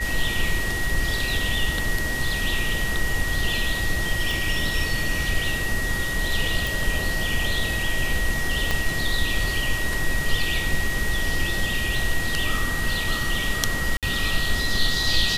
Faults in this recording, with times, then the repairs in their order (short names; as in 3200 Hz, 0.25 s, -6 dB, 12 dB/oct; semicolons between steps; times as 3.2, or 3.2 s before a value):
tone 1900 Hz -27 dBFS
4.31 pop
6.67 pop
8.71 pop -9 dBFS
13.97–14.03 gap 57 ms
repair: de-click; notch 1900 Hz, Q 30; interpolate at 13.97, 57 ms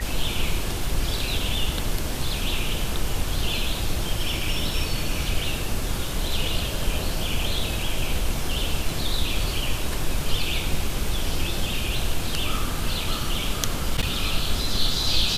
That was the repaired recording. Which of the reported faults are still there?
4.31 pop
8.71 pop